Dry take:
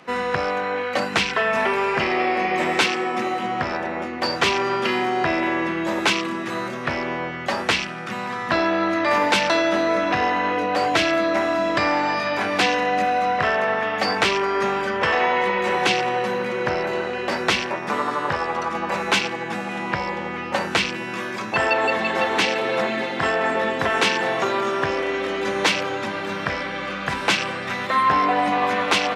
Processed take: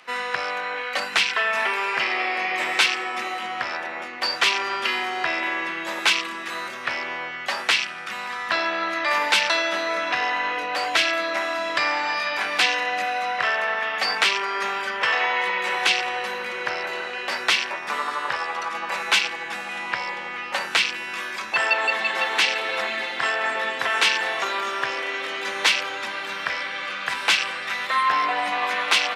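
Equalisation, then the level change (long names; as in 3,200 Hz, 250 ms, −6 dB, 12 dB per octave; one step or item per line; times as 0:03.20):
tilt shelving filter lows −7 dB, about 920 Hz
low-shelf EQ 260 Hz −11.5 dB
parametric band 6,500 Hz −3 dB
−3.0 dB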